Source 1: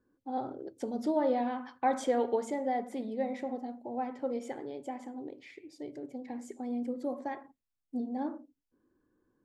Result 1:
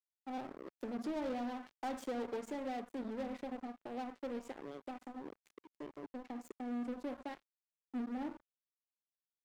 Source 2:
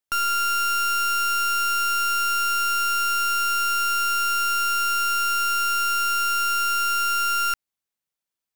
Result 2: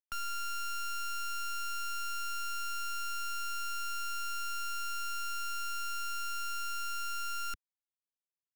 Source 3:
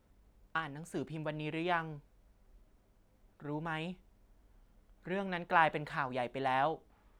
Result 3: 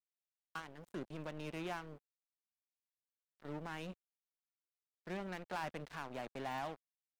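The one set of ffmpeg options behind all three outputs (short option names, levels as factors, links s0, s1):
-filter_complex "[0:a]acrossover=split=250[s0][s1];[s1]acompressor=threshold=0.00224:ratio=1.5[s2];[s0][s2]amix=inputs=2:normalize=0,aeval=exprs='sgn(val(0))*max(abs(val(0))-0.00447,0)':c=same,equalizer=f=95:w=1.4:g=-9.5,asoftclip=type=tanh:threshold=0.0133,volume=1.58"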